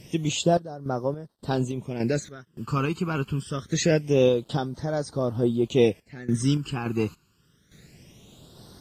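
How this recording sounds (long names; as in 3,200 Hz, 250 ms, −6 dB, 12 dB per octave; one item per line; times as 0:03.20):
a quantiser's noise floor 10 bits, dither none
phaser sweep stages 12, 0.25 Hz, lowest notch 590–2,600 Hz
sample-and-hold tremolo, depth 90%
AAC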